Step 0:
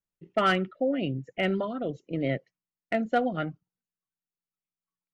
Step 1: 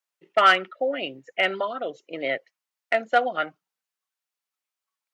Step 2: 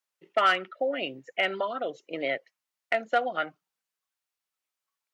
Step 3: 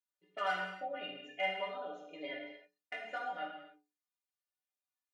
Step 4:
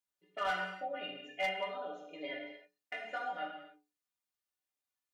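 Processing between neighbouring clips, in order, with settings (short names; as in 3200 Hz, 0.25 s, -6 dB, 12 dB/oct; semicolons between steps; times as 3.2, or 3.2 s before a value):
HPF 710 Hz 12 dB/oct; high shelf 7000 Hz -4.5 dB; gain +9 dB
compressor 1.5:1, threshold -29 dBFS, peak gain reduction 6.5 dB; wow and flutter 17 cents
metallic resonator 88 Hz, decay 0.41 s, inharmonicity 0.03; non-linear reverb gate 0.33 s falling, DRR -1 dB; gain -4 dB
hard clip -28 dBFS, distortion -20 dB; gain +1 dB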